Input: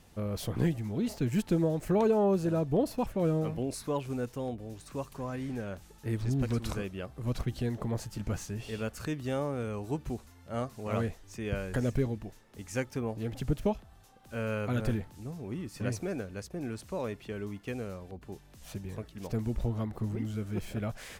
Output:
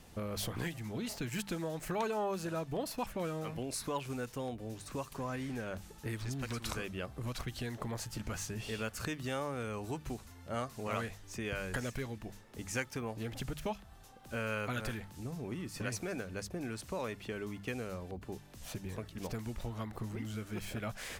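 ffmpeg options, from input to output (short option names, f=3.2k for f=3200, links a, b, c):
-filter_complex "[0:a]bandreject=f=50:t=h:w=6,bandreject=f=100:t=h:w=6,bandreject=f=150:t=h:w=6,bandreject=f=200:t=h:w=6,acrossover=split=920[a][b];[a]acompressor=threshold=-40dB:ratio=6[c];[c][b]amix=inputs=2:normalize=0,volume=2.5dB"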